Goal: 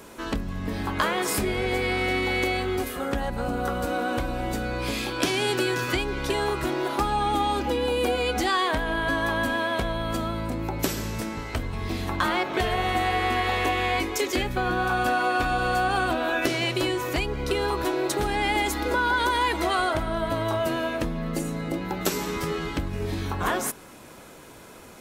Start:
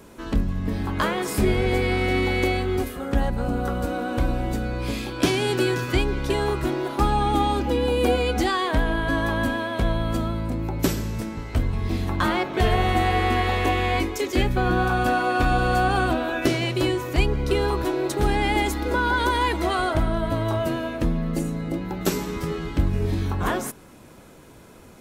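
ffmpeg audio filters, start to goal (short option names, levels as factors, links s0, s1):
-af "acompressor=threshold=0.0631:ratio=3,lowshelf=f=340:g=-9,volume=1.78"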